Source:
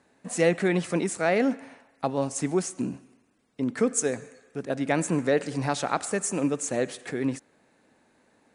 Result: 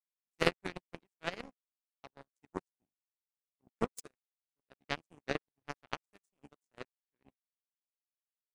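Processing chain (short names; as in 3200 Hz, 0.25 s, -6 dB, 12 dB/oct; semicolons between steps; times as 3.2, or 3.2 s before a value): harmoniser -5 st -11 dB, -4 st -11 dB, -3 st -14 dB; power-law curve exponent 3; in parallel at +2 dB: limiter -19 dBFS, peak gain reduction 12 dB; on the sum: high shelf 5400 Hz +4 dB; upward expander 2.5:1, over -47 dBFS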